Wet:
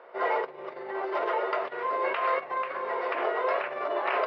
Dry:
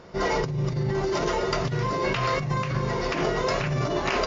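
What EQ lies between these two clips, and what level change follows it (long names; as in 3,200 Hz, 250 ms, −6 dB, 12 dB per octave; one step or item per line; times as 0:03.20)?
high-pass filter 490 Hz 24 dB per octave
low-pass filter 2,700 Hz 12 dB per octave
high-frequency loss of the air 330 metres
+2.0 dB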